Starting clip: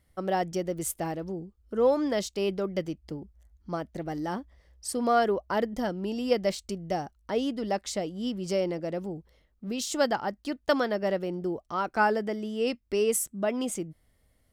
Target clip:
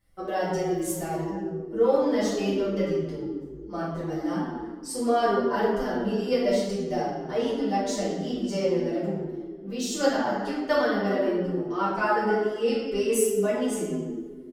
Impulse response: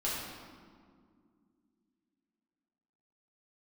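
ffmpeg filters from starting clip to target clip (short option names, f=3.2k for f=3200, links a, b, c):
-filter_complex "[1:a]atrim=start_sample=2205,asetrate=57330,aresample=44100[a];[0:a][a]afir=irnorm=-1:irlink=0,asplit=2[b][c];[c]adelay=6.9,afreqshift=-2.1[d];[b][d]amix=inputs=2:normalize=1,volume=1.5dB"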